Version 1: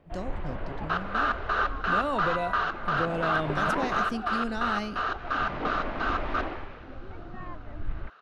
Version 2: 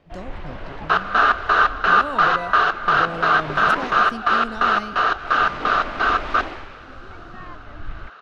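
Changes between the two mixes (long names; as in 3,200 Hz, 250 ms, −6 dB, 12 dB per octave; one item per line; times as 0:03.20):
first sound: remove head-to-tape spacing loss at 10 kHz 26 dB
second sound +11.0 dB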